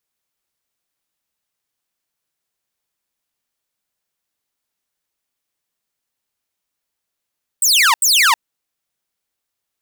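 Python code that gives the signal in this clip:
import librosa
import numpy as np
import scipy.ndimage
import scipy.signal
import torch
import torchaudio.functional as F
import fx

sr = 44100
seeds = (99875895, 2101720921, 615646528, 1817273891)

y = fx.laser_zaps(sr, level_db=-7.0, start_hz=8700.0, end_hz=860.0, length_s=0.32, wave='saw', shots=2, gap_s=0.08)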